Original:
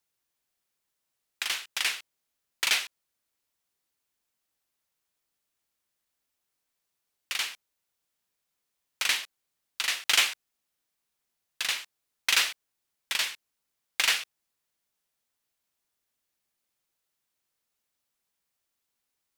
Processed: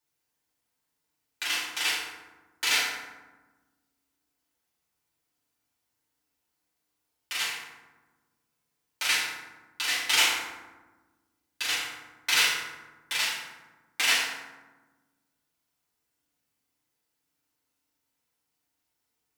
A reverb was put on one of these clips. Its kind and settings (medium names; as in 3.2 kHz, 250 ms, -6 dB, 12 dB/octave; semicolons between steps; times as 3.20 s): FDN reverb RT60 1.2 s, low-frequency decay 1.6×, high-frequency decay 0.5×, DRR -8.5 dB; trim -6 dB